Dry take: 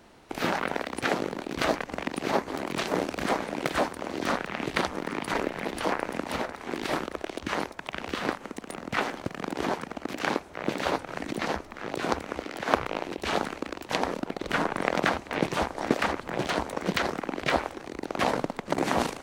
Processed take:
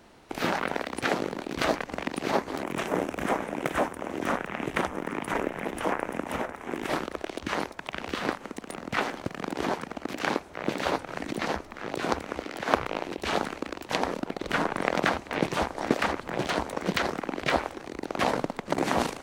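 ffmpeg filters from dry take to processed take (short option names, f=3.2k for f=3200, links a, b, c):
-filter_complex "[0:a]asettb=1/sr,asplit=3[a][b][c];[a]atrim=end=2.634[d];[b]atrim=start=2.63:end=6.9,asetpts=PTS-STARTPTS,afade=t=in:d=0.004:c=qsin,afade=t=out:st=4.266:d=0.004:c=qsin,equalizer=f=4.4k:t=o:w=0.61:g=-13.5[e];[c]atrim=start=6.896[f];[d][e]acrossfade=d=0.004:c1=hsin:c2=qsin[g];[g][f]acrossfade=d=0.004:c1=qsin:c2=hsin"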